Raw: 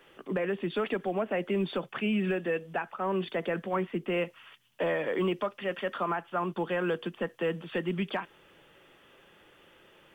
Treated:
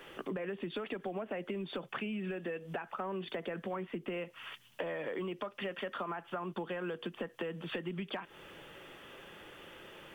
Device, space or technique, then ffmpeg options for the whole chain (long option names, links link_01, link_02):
serial compression, peaks first: -af "acompressor=threshold=-38dB:ratio=6,acompressor=threshold=-45dB:ratio=2,volume=6.5dB"